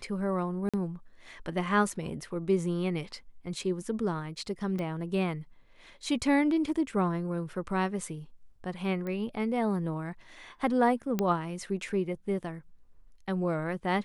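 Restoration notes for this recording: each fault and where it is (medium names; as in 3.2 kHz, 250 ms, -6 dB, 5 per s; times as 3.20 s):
0.69–0.74 s: dropout 46 ms
4.79 s: pop -24 dBFS
9.07 s: pop -25 dBFS
11.19 s: pop -15 dBFS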